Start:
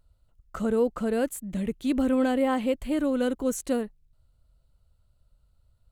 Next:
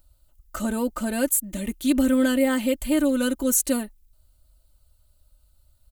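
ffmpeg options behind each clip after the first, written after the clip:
ffmpeg -i in.wav -af "aemphasis=mode=production:type=75kf,aecho=1:1:3.3:0.81" out.wav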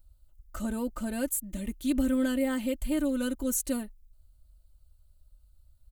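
ffmpeg -i in.wav -af "lowshelf=frequency=140:gain=11,volume=-9dB" out.wav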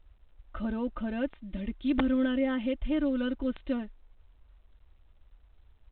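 ffmpeg -i in.wav -af "aeval=exprs='(mod(7.08*val(0)+1,2)-1)/7.08':channel_layout=same" -ar 8000 -c:a pcm_alaw out.wav

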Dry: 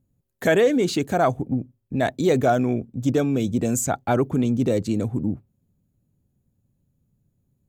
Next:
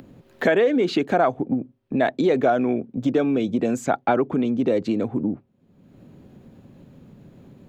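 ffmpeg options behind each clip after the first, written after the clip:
ffmpeg -i in.wav -filter_complex "[0:a]acompressor=threshold=-24dB:ratio=5,acrossover=split=200 4000:gain=0.141 1 0.0708[link_01][link_02][link_03];[link_01][link_02][link_03]amix=inputs=3:normalize=0,acompressor=mode=upward:threshold=-37dB:ratio=2.5,volume=8.5dB" out.wav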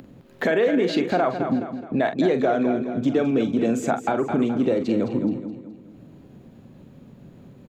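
ffmpeg -i in.wav -filter_complex "[0:a]asplit=2[link_01][link_02];[link_02]adelay=44,volume=-10dB[link_03];[link_01][link_03]amix=inputs=2:normalize=0,asplit=2[link_04][link_05];[link_05]aecho=0:1:211|422|633|844|1055:0.316|0.136|0.0585|0.0251|0.0108[link_06];[link_04][link_06]amix=inputs=2:normalize=0,alimiter=limit=-11dB:level=0:latency=1:release=197" out.wav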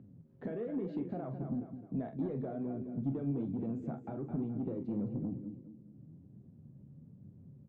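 ffmpeg -i in.wav -af "bandpass=frequency=120:width_type=q:width=1.5:csg=0,asoftclip=type=tanh:threshold=-22.5dB,flanger=delay=9.9:depth=4.9:regen=56:speed=1.1:shape=sinusoidal" out.wav

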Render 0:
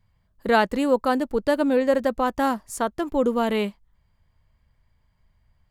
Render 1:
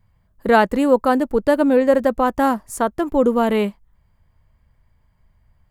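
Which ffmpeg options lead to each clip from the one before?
ffmpeg -i in.wav -af "equalizer=frequency=4300:width_type=o:width=1.8:gain=-6.5,volume=5.5dB" out.wav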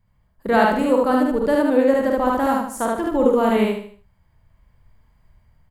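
ffmpeg -i in.wav -filter_complex "[0:a]asplit=2[link_01][link_02];[link_02]aecho=0:1:75|150|225|300:0.447|0.165|0.0612|0.0226[link_03];[link_01][link_03]amix=inputs=2:normalize=0,dynaudnorm=framelen=440:gausssize=5:maxgain=7.5dB,asplit=2[link_04][link_05];[link_05]aecho=0:1:48|75:0.596|0.473[link_06];[link_04][link_06]amix=inputs=2:normalize=0,volume=-5dB" out.wav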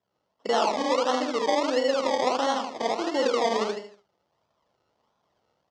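ffmpeg -i in.wav -af "acompressor=threshold=-18dB:ratio=3,acrusher=samples=25:mix=1:aa=0.000001:lfo=1:lforange=15:lforate=1.5,highpass=430,equalizer=frequency=1600:width_type=q:width=4:gain=-9,equalizer=frequency=2400:width_type=q:width=4:gain=-9,equalizer=frequency=3800:width_type=q:width=4:gain=-4,lowpass=frequency=5600:width=0.5412,lowpass=frequency=5600:width=1.3066" out.wav

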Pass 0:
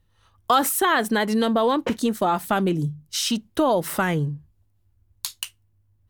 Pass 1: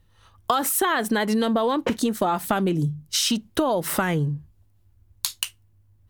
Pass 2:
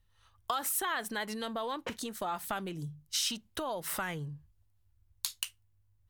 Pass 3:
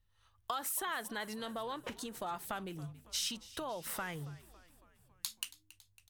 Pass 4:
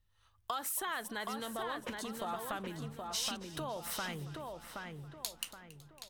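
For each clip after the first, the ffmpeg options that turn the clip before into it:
ffmpeg -i in.wav -af "acompressor=threshold=-24dB:ratio=6,volume=5dB" out.wav
ffmpeg -i in.wav -af "equalizer=frequency=260:width_type=o:width=2.6:gain=-10,volume=-8.5dB" out.wav
ffmpeg -i in.wav -filter_complex "[0:a]asplit=6[link_01][link_02][link_03][link_04][link_05][link_06];[link_02]adelay=277,afreqshift=-91,volume=-19dB[link_07];[link_03]adelay=554,afreqshift=-182,volume=-23.4dB[link_08];[link_04]adelay=831,afreqshift=-273,volume=-27.9dB[link_09];[link_05]adelay=1108,afreqshift=-364,volume=-32.3dB[link_10];[link_06]adelay=1385,afreqshift=-455,volume=-36.7dB[link_11];[link_01][link_07][link_08][link_09][link_10][link_11]amix=inputs=6:normalize=0,volume=-4.5dB" out.wav
ffmpeg -i in.wav -filter_complex "[0:a]asplit=2[link_01][link_02];[link_02]adelay=773,lowpass=frequency=3000:poles=1,volume=-4dB,asplit=2[link_03][link_04];[link_04]adelay=773,lowpass=frequency=3000:poles=1,volume=0.38,asplit=2[link_05][link_06];[link_06]adelay=773,lowpass=frequency=3000:poles=1,volume=0.38,asplit=2[link_07][link_08];[link_08]adelay=773,lowpass=frequency=3000:poles=1,volume=0.38,asplit=2[link_09][link_10];[link_10]adelay=773,lowpass=frequency=3000:poles=1,volume=0.38[link_11];[link_01][link_03][link_05][link_07][link_09][link_11]amix=inputs=6:normalize=0" out.wav

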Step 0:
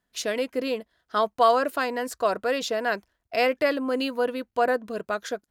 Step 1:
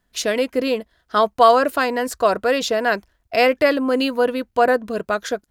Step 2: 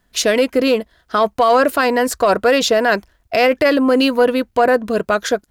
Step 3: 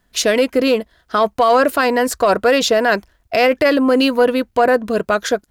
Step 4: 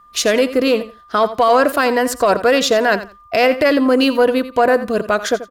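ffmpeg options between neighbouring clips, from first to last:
ffmpeg -i in.wav -af "lowshelf=frequency=77:gain=11.5,volume=6.5dB" out.wav
ffmpeg -i in.wav -af "alimiter=limit=-11dB:level=0:latency=1:release=24,acontrast=73" out.wav
ffmpeg -i in.wav -af anull out.wav
ffmpeg -i in.wav -af "aeval=exprs='val(0)+0.00562*sin(2*PI*1200*n/s)':channel_layout=same,aecho=1:1:85|170:0.2|0.0359" out.wav

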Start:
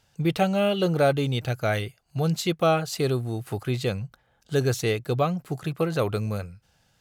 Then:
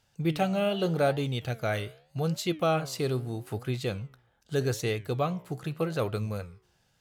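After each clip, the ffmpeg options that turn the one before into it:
ffmpeg -i in.wav -af "flanger=delay=7.6:depth=9.7:regen=85:speed=0.82:shape=triangular" out.wav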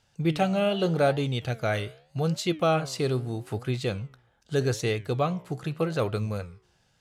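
ffmpeg -i in.wav -af "lowpass=10000,volume=2.5dB" out.wav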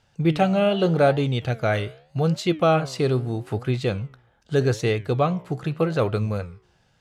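ffmpeg -i in.wav -af "highshelf=frequency=4700:gain=-9,volume=5dB" out.wav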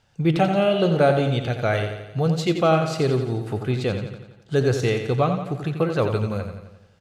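ffmpeg -i in.wav -af "aecho=1:1:87|174|261|348|435|522|609:0.398|0.219|0.12|0.0662|0.0364|0.02|0.011" out.wav

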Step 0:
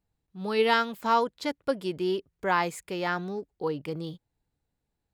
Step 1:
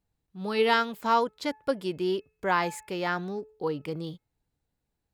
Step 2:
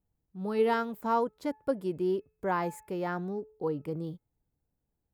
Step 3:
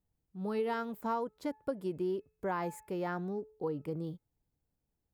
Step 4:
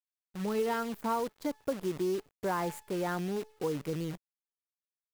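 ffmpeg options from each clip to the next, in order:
ffmpeg -i in.wav -af "bandreject=frequency=431.7:width_type=h:width=4,bandreject=frequency=863.4:width_type=h:width=4,bandreject=frequency=1295.1:width_type=h:width=4,bandreject=frequency=1726.8:width_type=h:width=4,bandreject=frequency=2158.5:width_type=h:width=4,bandreject=frequency=2590.2:width_type=h:width=4" out.wav
ffmpeg -i in.wav -af "equalizer=frequency=3700:width_type=o:width=2.7:gain=-15" out.wav
ffmpeg -i in.wav -af "acompressor=threshold=-28dB:ratio=6,volume=-2dB" out.wav
ffmpeg -i in.wav -filter_complex "[0:a]asplit=2[link_01][link_02];[link_02]asoftclip=type=tanh:threshold=-33.5dB,volume=-9.5dB[link_03];[link_01][link_03]amix=inputs=2:normalize=0,acrusher=bits=8:dc=4:mix=0:aa=0.000001,volume=1dB" out.wav

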